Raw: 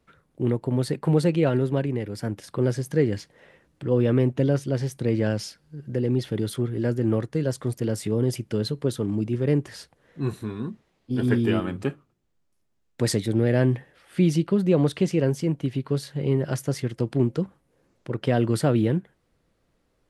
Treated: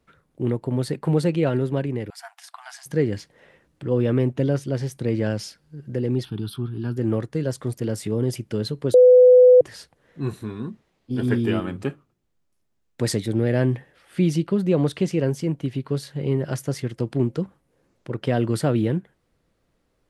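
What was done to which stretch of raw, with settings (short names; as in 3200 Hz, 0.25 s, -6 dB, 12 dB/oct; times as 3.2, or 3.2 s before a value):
2.1–2.86 brick-wall FIR high-pass 660 Hz
6.25–6.97 fixed phaser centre 2000 Hz, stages 6
8.94–9.61 bleep 501 Hz -7.5 dBFS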